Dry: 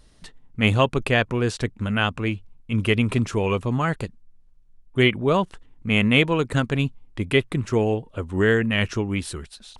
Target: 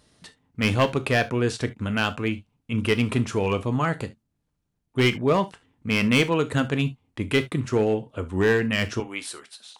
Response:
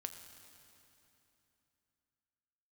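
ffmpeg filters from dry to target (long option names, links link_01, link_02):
-filter_complex "[0:a]asetnsamples=nb_out_samples=441:pad=0,asendcmd='9 highpass f 530',highpass=100,asoftclip=type=hard:threshold=-12.5dB[link_01];[1:a]atrim=start_sample=2205,atrim=end_sample=3528[link_02];[link_01][link_02]afir=irnorm=-1:irlink=0,volume=3dB"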